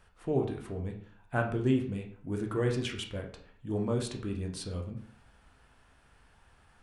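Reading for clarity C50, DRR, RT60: 8.0 dB, 2.0 dB, 0.55 s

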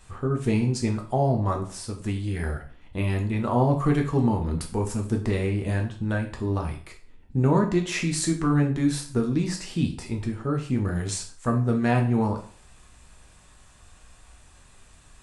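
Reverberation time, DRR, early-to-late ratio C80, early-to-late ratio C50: 0.45 s, 2.0 dB, 14.5 dB, 10.0 dB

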